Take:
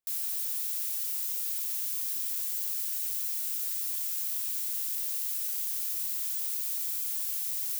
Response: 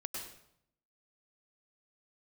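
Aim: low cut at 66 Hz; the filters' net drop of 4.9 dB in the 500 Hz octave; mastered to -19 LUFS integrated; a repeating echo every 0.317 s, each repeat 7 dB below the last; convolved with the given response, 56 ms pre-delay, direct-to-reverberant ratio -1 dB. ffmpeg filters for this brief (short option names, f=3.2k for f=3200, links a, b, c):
-filter_complex "[0:a]highpass=66,equalizer=f=500:t=o:g=-6.5,aecho=1:1:317|634|951|1268|1585:0.447|0.201|0.0905|0.0407|0.0183,asplit=2[a][b];[1:a]atrim=start_sample=2205,adelay=56[c];[b][c]afir=irnorm=-1:irlink=0,volume=1dB[d];[a][d]amix=inputs=2:normalize=0,volume=6dB"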